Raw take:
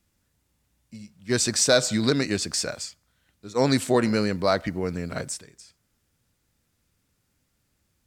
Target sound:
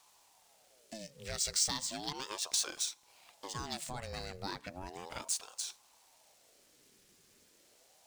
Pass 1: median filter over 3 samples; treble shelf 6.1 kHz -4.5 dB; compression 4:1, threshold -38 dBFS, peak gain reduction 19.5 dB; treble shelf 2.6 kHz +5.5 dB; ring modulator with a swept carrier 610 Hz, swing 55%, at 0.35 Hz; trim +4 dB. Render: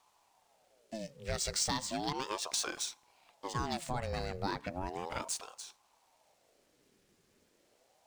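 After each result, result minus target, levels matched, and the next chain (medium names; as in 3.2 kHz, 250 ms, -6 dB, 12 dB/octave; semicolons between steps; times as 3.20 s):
compression: peak gain reduction -7 dB; 2 kHz band +3.5 dB
median filter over 3 samples; treble shelf 6.1 kHz -4.5 dB; compression 4:1, threshold -47 dBFS, peak gain reduction 26 dB; treble shelf 2.6 kHz +5.5 dB; ring modulator with a swept carrier 610 Hz, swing 55%, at 0.35 Hz; trim +4 dB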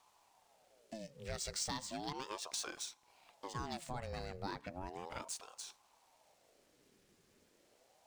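2 kHz band +3.5 dB
median filter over 3 samples; treble shelf 6.1 kHz -4.5 dB; compression 4:1, threshold -47 dBFS, peak gain reduction 26 dB; treble shelf 2.6 kHz +16.5 dB; ring modulator with a swept carrier 610 Hz, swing 55%, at 0.35 Hz; trim +4 dB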